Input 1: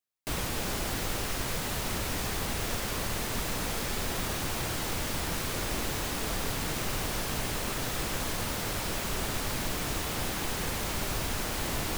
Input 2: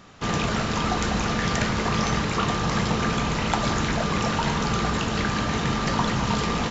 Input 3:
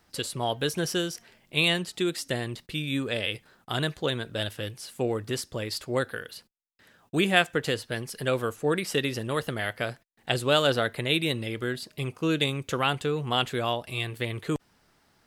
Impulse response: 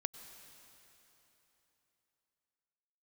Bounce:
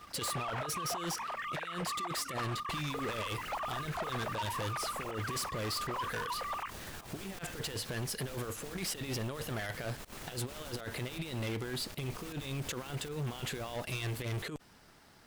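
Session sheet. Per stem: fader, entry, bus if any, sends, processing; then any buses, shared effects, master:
-15.0 dB, 2.45 s, no send, pump 158 bpm, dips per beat 1, -20 dB, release 0.135 s
-1.0 dB, 0.00 s, no send, sine-wave speech; LPF 1200 Hz 6 dB/oct; auto duck -7 dB, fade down 0.75 s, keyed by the third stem
+1.0 dB, 0.00 s, no send, negative-ratio compressor -33 dBFS, ratio -0.5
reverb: off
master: sample leveller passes 1; hard clip -26 dBFS, distortion -9 dB; limiter -33 dBFS, peak gain reduction 7 dB

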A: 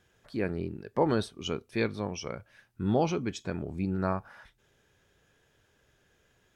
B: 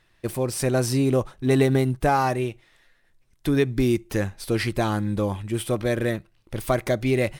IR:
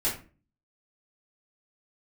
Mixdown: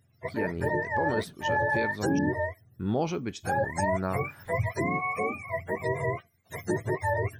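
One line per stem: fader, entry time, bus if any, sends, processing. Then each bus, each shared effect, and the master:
-1.0 dB, 0.00 s, muted 2.19–2.74, no send, gate -59 dBFS, range -19 dB
-3.0 dB, 0.00 s, no send, spectrum mirrored in octaves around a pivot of 480 Hz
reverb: off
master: limiter -18 dBFS, peak gain reduction 7 dB

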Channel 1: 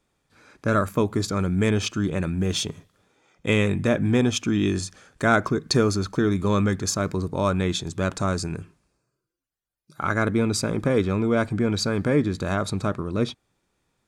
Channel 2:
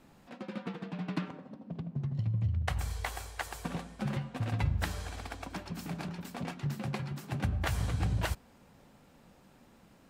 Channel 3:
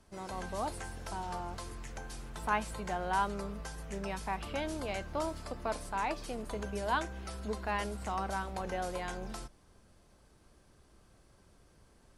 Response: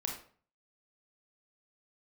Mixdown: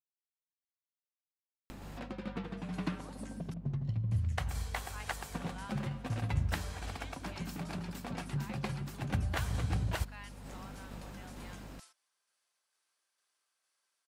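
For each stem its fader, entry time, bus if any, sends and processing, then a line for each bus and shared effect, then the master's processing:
off
-0.5 dB, 1.70 s, no send, upward compressor, threshold -35 dBFS; hum 50 Hz, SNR 12 dB
-7.5 dB, 2.45 s, muted 3.54–4.11, no send, Bessel high-pass 1900 Hz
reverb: off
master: tremolo saw down 2.2 Hz, depth 30%

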